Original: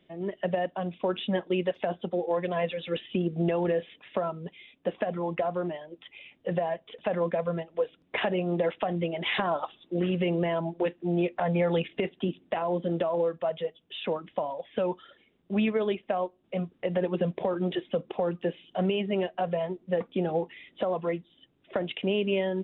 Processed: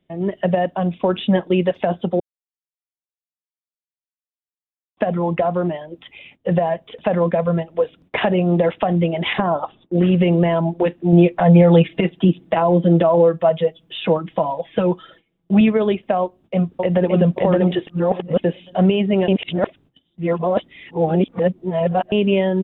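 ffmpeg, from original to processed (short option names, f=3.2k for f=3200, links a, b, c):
-filter_complex "[0:a]asettb=1/sr,asplit=3[a][b][c];[a]atrim=end=9.334[d];[b]atrim=start=9.33:end=9.94,asetpts=PTS-STARTPTS,afade=t=in:d=0.004:c=qsin,afade=t=out:st=0.606:d=0.004:c=qsin,lowpass=f=1.2k:p=1[e];[c]atrim=start=9.936[f];[d][e]acrossfade=d=0.004:c1=hsin:c2=qsin[g];[g][f]acrossfade=d=0.004:c1=qsin:c2=hsin,asettb=1/sr,asplit=3[h][i][j];[h]atrim=end=11.124[k];[i]atrim=start=11.12:end=15.61,asetpts=PTS-STARTPTS,afade=t=in:d=0.004:c=qsin,afade=t=out:st=4.486:d=0.004:c=qsin,aecho=1:1:6.1:0.65,atrim=end_sample=198009[l];[j]atrim=start=15.606[m];[k][l]acrossfade=d=0.004:c1=hsin:c2=qsin[n];[n][m]acrossfade=d=0.004:c1=qsin:c2=hsin,asplit=2[o][p];[p]afade=t=in:st=16.22:d=0.01,afade=t=out:st=17.09:d=0.01,aecho=0:1:570|1140|1710:0.944061|0.188812|0.0377624[q];[o][q]amix=inputs=2:normalize=0,asplit=7[r][s][t][u][v][w][x];[r]atrim=end=2.2,asetpts=PTS-STARTPTS,afade=t=out:st=2.196:d=0.004:c=hsin[y];[s]atrim=start=2.2:end=4.97,asetpts=PTS-STARTPTS,volume=0[z];[t]atrim=start=4.97:end=17.872,asetpts=PTS-STARTPTS,afade=t=in:d=0.004:c=hsin[aa];[u]atrim=start=17.868:end=18.442,asetpts=PTS-STARTPTS,areverse[ab];[v]atrim=start=18.438:end=19.282[ac];[w]atrim=start=19.278:end=22.122,asetpts=PTS-STARTPTS,areverse[ad];[x]atrim=start=22.118[ae];[y][z][aa]concat=n=3:v=0:a=1[af];[af][ab]acrossfade=d=0.004:c1=hsin:c2=hsin[ag];[ag][ac]acrossfade=d=0.004:c1=hsin:c2=hsin[ah];[ah][ad]acrossfade=d=0.004:c1=hsin:c2=hsin[ai];[ai][ae]acrossfade=d=0.004:c1=hsin:c2=hsin,bass=f=250:g=9,treble=f=4k:g=0,agate=range=-15dB:threshold=-54dB:ratio=16:detection=peak,equalizer=f=800:t=o:w=1.5:g=3.5,volume=6.5dB"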